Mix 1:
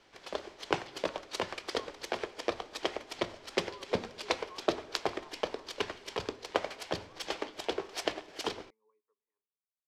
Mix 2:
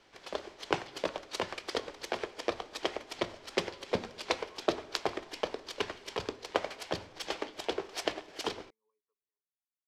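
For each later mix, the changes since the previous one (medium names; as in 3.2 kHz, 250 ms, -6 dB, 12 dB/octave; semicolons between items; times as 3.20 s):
speech -9.0 dB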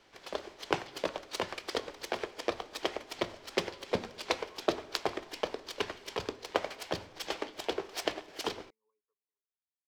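master: remove low-pass 11 kHz 12 dB/octave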